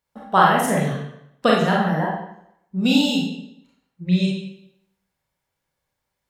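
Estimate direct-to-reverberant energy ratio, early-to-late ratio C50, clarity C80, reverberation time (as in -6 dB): -3.5 dB, 1.5 dB, 5.5 dB, 0.75 s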